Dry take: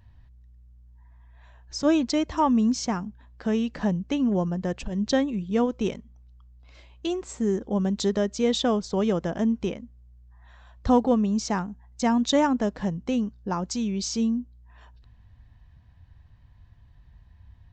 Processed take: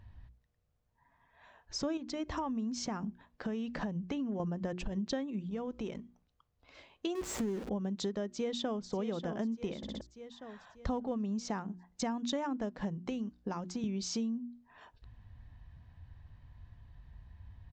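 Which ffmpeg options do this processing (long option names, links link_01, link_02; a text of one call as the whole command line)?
ffmpeg -i in.wav -filter_complex "[0:a]asettb=1/sr,asplit=3[link_01][link_02][link_03];[link_01]atrim=end=1.974[link_04];[link_02]atrim=start=1.97:end=4.4,asetpts=PTS-STARTPTS,afade=type=in:duration=0.004:curve=qsin,afade=type=out:start_time=2.426:duration=0.004:curve=qsin,acompressor=threshold=-30dB:ratio=2.5:attack=3.2:release=140:knee=1:detection=peak[link_05];[link_03]atrim=start=4.396[link_06];[link_04][link_05]acrossfade=duration=0.004:curve1=hsin:curve2=qsin[link_07];[link_07][link_06]acrossfade=duration=0.004:curve1=qsin:curve2=hsin,asettb=1/sr,asplit=3[link_08][link_09][link_10];[link_08]atrim=end=5.464[link_11];[link_09]atrim=start=5.46:end=5.96,asetpts=PTS-STARTPTS,afade=type=in:duration=0.004:curve=qsin,afade=type=out:start_time=0.496:duration=0.004:curve=qsin,acompressor=threshold=-38dB:ratio=2.5:attack=3.2:release=140:knee=1:detection=peak[link_12];[link_10]atrim=start=5.956[link_13];[link_11][link_12]acrossfade=duration=0.004:curve1=hsin:curve2=qsin[link_14];[link_14][link_13]acrossfade=duration=0.004:curve1=qsin:curve2=hsin,asettb=1/sr,asplit=3[link_15][link_16][link_17];[link_15]atrim=end=7.154[link_18];[link_16]atrim=start=7.15:end=7.69,asetpts=PTS-STARTPTS,afade=type=in:duration=0.004:curve=qsin,afade=type=out:start_time=0.536:duration=0.004:curve=qsin,aeval=exprs='val(0)+0.5*0.0282*sgn(val(0))':channel_layout=same[link_19];[link_17]atrim=start=7.686[link_20];[link_18][link_19]acrossfade=duration=0.004:curve1=hsin:curve2=qsin[link_21];[link_21][link_20]acrossfade=duration=0.004:curve1=qsin:curve2=hsin,asplit=2[link_22][link_23];[link_23]afade=type=in:start_time=8.28:duration=0.01,afade=type=out:start_time=8.88:duration=0.01,aecho=0:1:590|1180|1770|2360|2950:0.281838|0.126827|0.0570723|0.0256825|0.0115571[link_24];[link_22][link_24]amix=inputs=2:normalize=0,asettb=1/sr,asplit=3[link_25][link_26][link_27];[link_25]atrim=end=13.074[link_28];[link_26]atrim=start=13.07:end=13.84,asetpts=PTS-STARTPTS,afade=type=in:duration=0.004:curve=qsin,afade=type=out:start_time=0.766:duration=0.004:curve=qsin,acrossover=split=200|2000[link_29][link_30][link_31];[link_29]acompressor=threshold=-39dB:ratio=4[link_32];[link_30]acompressor=threshold=-34dB:ratio=4[link_33];[link_31]acompressor=threshold=-45dB:ratio=4[link_34];[link_32][link_33][link_34]amix=inputs=3:normalize=0[link_35];[link_27]atrim=start=13.836[link_36];[link_28][link_35]acrossfade=duration=0.004:curve1=hsin:curve2=qsin[link_37];[link_37][link_36]acrossfade=duration=0.004:curve1=qsin:curve2=hsin,asplit=5[link_38][link_39][link_40][link_41][link_42];[link_38]atrim=end=9.832[link_43];[link_39]atrim=start=9.768:end=9.832[link_44];[link_40]atrim=start=9.768:end=9.832[link_45];[link_41]atrim=start=9.768:end=9.832[link_46];[link_42]atrim=start=10.008[link_47];[link_43][link_44]acrossfade=duration=0.004:curve1=hsin:curve2=hsin[link_48];[link_48][link_45]acrossfade=duration=0.004:curve1=hsin:curve2=hsin[link_49];[link_49][link_46]acrossfade=duration=0.004:curve1=hsin:curve2=hsin[link_50];[link_50][link_47]acrossfade=duration=0.004:curve1=hsin:curve2=hsin,highshelf=frequency=5400:gain=-8,bandreject=frequency=60:width_type=h:width=6,bandreject=frequency=120:width_type=h:width=6,bandreject=frequency=180:width_type=h:width=6,bandreject=frequency=240:width_type=h:width=6,bandreject=frequency=300:width_type=h:width=6,bandreject=frequency=360:width_type=h:width=6,acompressor=threshold=-33dB:ratio=6" out.wav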